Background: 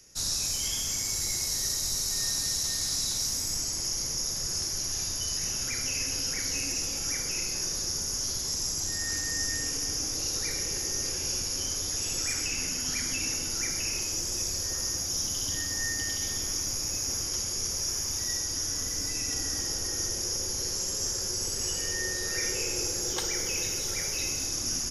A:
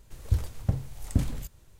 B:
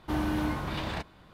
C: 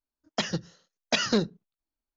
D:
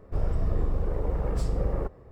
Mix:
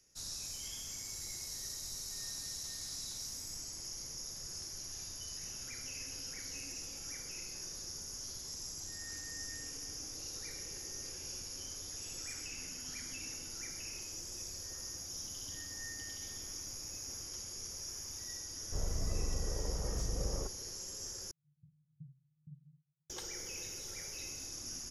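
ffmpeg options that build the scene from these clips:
ffmpeg -i bed.wav -i cue0.wav -i cue1.wav -i cue2.wav -i cue3.wav -filter_complex "[0:a]volume=-13.5dB[link_01];[1:a]asuperpass=centerf=150:order=4:qfactor=7.7[link_02];[link_01]asplit=2[link_03][link_04];[link_03]atrim=end=21.314[link_05];[link_02]atrim=end=1.79,asetpts=PTS-STARTPTS,volume=-12.5dB[link_06];[link_04]atrim=start=23.096[link_07];[4:a]atrim=end=2.11,asetpts=PTS-STARTPTS,volume=-10dB,afade=type=in:duration=0.004:curve=hsin,afade=type=out:start_time=2.106:duration=0.004:curve=hsin,adelay=820260S[link_08];[link_05][link_06]acrossfade=duration=0.004:curve1=hsin:curve2=hsin[link_09];[link_09][link_07]acrossfade=duration=0.004:curve1=hsin:curve2=hsin[link_10];[link_10][link_08]amix=inputs=2:normalize=0" out.wav

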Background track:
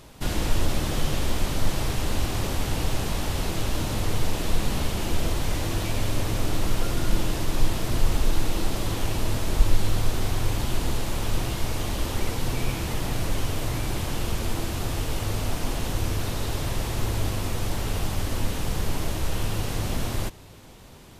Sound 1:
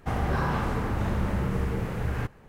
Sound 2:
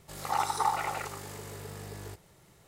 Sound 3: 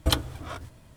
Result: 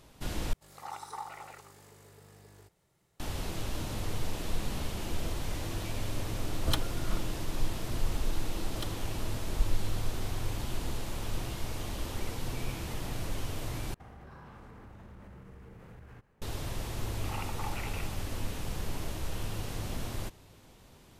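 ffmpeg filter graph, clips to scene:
ffmpeg -i bed.wav -i cue0.wav -i cue1.wav -i cue2.wav -filter_complex "[2:a]asplit=2[link_01][link_02];[3:a]asplit=2[link_03][link_04];[0:a]volume=-9dB[link_05];[1:a]acompressor=threshold=-32dB:ratio=6:attack=3.2:release=140:knee=1:detection=peak[link_06];[link_02]lowpass=frequency=2600:width_type=q:width=8[link_07];[link_05]asplit=3[link_08][link_09][link_10];[link_08]atrim=end=0.534[link_11];[link_01]atrim=end=2.67,asetpts=PTS-STARTPTS,volume=-13dB[link_12];[link_09]atrim=start=3.196:end=13.944[link_13];[link_06]atrim=end=2.48,asetpts=PTS-STARTPTS,volume=-14.5dB[link_14];[link_10]atrim=start=16.416[link_15];[link_03]atrim=end=0.96,asetpts=PTS-STARTPTS,volume=-7.5dB,afade=type=in:duration=0.004:curve=hsin,afade=type=out:start_time=0.956:duration=0.004:curve=hsin,adelay=6610[link_16];[link_04]atrim=end=0.96,asetpts=PTS-STARTPTS,volume=-17.5dB,afade=type=in:duration=0.004:curve=hsin,afade=type=out:start_time=0.956:duration=0.004:curve=hsin,adelay=8700[link_17];[link_07]atrim=end=2.67,asetpts=PTS-STARTPTS,volume=-15dB,afade=type=in:duration=0.004:curve=hsin,afade=type=out:start_time=2.666:duration=0.004:curve=hsin,adelay=16990[link_18];[link_11][link_12]acrossfade=duration=0.004:curve1=hsin:curve2=hsin[link_19];[link_19][link_13]acrossfade=duration=0.004:curve1=hsin:curve2=hsin[link_20];[link_20][link_14]acrossfade=duration=0.004:curve1=hsin:curve2=hsin[link_21];[link_21][link_15]acrossfade=duration=0.004:curve1=hsin:curve2=hsin[link_22];[link_22][link_16][link_17][link_18]amix=inputs=4:normalize=0" out.wav

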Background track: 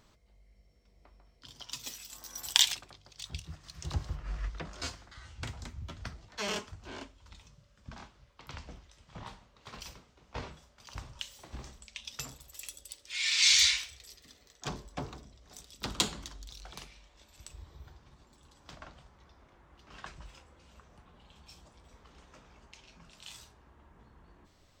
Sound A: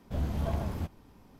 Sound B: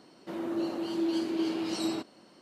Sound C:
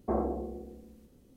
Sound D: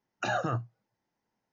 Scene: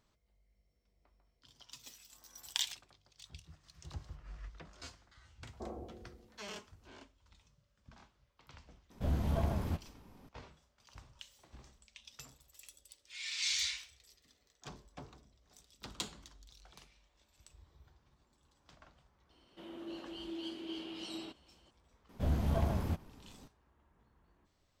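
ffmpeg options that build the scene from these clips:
ffmpeg -i bed.wav -i cue0.wav -i cue1.wav -i cue2.wav -filter_complex "[1:a]asplit=2[link_01][link_02];[0:a]volume=-11.5dB[link_03];[3:a]bass=frequency=250:gain=-3,treble=frequency=4000:gain=4[link_04];[2:a]equalizer=frequency=3100:width=3.1:gain=14.5[link_05];[link_04]atrim=end=1.36,asetpts=PTS-STARTPTS,volume=-14.5dB,afade=type=in:duration=0.004:curve=hsin,afade=type=out:start_time=1.356:duration=0.004:curve=hsin,adelay=5520[link_06];[link_01]atrim=end=1.39,asetpts=PTS-STARTPTS,volume=-1.5dB,afade=type=in:duration=0.004:curve=hsin,afade=type=out:start_time=1.386:duration=0.004:curve=hsin,adelay=392490S[link_07];[link_05]atrim=end=2.41,asetpts=PTS-STARTPTS,volume=-14dB,afade=type=in:duration=0.004:curve=hsin,afade=type=out:start_time=2.406:duration=0.004:curve=hsin,adelay=19300[link_08];[link_02]atrim=end=1.39,asetpts=PTS-STARTPTS,volume=-0.5dB,afade=type=in:duration=0.004:curve=hsin,afade=type=out:start_time=1.386:duration=0.004:curve=hsin,adelay=22090[link_09];[link_03][link_06][link_07][link_08][link_09]amix=inputs=5:normalize=0" out.wav

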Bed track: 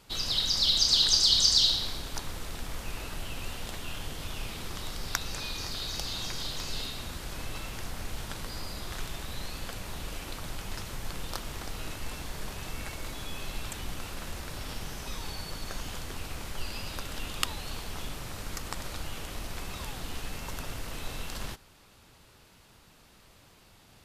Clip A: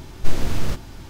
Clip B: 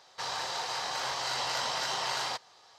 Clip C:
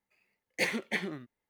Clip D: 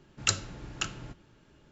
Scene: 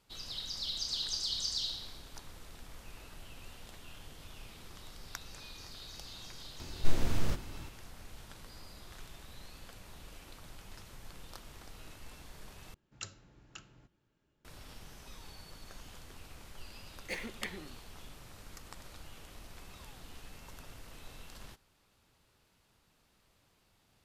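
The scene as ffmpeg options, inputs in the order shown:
ffmpeg -i bed.wav -i cue0.wav -i cue1.wav -i cue2.wav -i cue3.wav -filter_complex "[0:a]volume=-13dB[link_01];[3:a]aecho=1:1:97:0.168[link_02];[link_01]asplit=2[link_03][link_04];[link_03]atrim=end=12.744[link_05];[4:a]atrim=end=1.71,asetpts=PTS-STARTPTS,volume=-17.5dB[link_06];[link_04]atrim=start=14.446[link_07];[1:a]atrim=end=1.09,asetpts=PTS-STARTPTS,volume=-8dB,afade=type=in:duration=0.004:curve=hsin,afade=type=out:start_time=1.086:duration=0.004:curve=hsin,adelay=6600[link_08];[link_02]atrim=end=1.49,asetpts=PTS-STARTPTS,volume=-10dB,afade=type=in:duration=0.004:curve=hsin,afade=type=out:start_time=1.486:duration=0.004:curve=hsin,adelay=16500[link_09];[link_05][link_06]acrossfade=duration=0.004:curve1=hsin:curve2=hsin[link_10];[link_10][link_07]acrossfade=duration=0.004:curve1=hsin:curve2=hsin[link_11];[link_11][link_08][link_09]amix=inputs=3:normalize=0" out.wav

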